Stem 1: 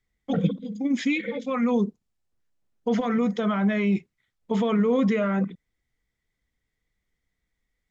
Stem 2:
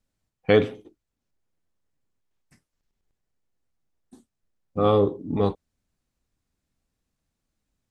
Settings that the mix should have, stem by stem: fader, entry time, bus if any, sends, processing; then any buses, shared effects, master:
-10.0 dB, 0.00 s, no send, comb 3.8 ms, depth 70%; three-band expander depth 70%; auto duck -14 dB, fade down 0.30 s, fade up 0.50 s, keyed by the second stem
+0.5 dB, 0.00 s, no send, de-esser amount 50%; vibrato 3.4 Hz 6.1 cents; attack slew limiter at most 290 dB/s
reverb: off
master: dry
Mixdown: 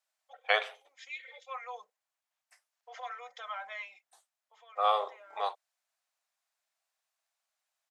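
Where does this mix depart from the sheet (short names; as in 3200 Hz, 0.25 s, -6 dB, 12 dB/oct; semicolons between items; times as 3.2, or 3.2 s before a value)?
stem 2: missing attack slew limiter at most 290 dB/s; master: extra elliptic high-pass 650 Hz, stop band 60 dB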